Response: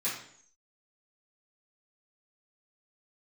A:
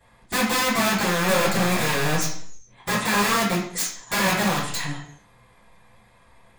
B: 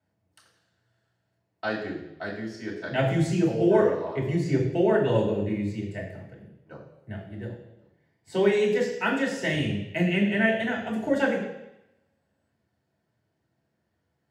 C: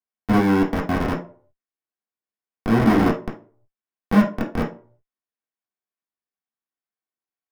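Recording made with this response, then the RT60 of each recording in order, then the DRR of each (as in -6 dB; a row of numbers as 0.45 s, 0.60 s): A; 0.60 s, 0.90 s, 0.45 s; -12.5 dB, -4.5 dB, -4.5 dB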